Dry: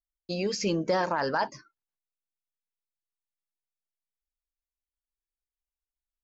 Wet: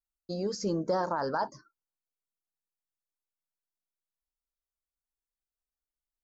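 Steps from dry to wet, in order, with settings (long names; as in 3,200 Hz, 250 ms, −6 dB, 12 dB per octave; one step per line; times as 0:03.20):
drawn EQ curve 1,400 Hz 0 dB, 2,500 Hz −23 dB, 4,200 Hz −5 dB, 7,900 Hz −2 dB
level −2.5 dB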